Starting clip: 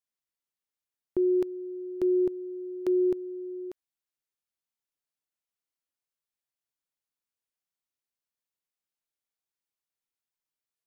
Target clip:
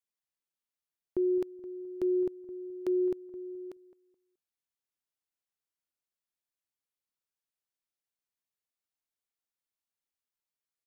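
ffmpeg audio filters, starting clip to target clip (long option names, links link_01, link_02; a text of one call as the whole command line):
ffmpeg -i in.wav -filter_complex "[0:a]asplit=2[link_01][link_02];[link_02]adelay=213,lowpass=frequency=1100:poles=1,volume=-15dB,asplit=2[link_03][link_04];[link_04]adelay=213,lowpass=frequency=1100:poles=1,volume=0.28,asplit=2[link_05][link_06];[link_06]adelay=213,lowpass=frequency=1100:poles=1,volume=0.28[link_07];[link_01][link_03][link_05][link_07]amix=inputs=4:normalize=0,volume=-3.5dB" out.wav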